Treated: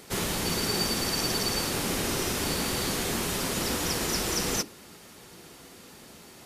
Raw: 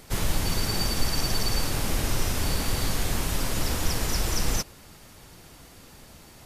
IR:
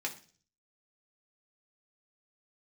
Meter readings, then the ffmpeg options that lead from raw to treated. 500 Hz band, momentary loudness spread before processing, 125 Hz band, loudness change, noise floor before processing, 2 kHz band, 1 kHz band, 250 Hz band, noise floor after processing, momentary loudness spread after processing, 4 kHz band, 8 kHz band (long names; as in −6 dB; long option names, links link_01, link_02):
+3.0 dB, 2 LU, −6.0 dB, 0.0 dB, −50 dBFS, +1.0 dB, +0.5 dB, +1.5 dB, −50 dBFS, 2 LU, +1.0 dB, +1.5 dB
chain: -filter_complex "[0:a]highpass=frequency=210:poles=1,asplit=2[link_01][link_02];[link_02]lowshelf=frequency=520:width_type=q:width=1.5:gain=13[link_03];[1:a]atrim=start_sample=2205,asetrate=74970,aresample=44100[link_04];[link_03][link_04]afir=irnorm=-1:irlink=0,volume=-9.5dB[link_05];[link_01][link_05]amix=inputs=2:normalize=0"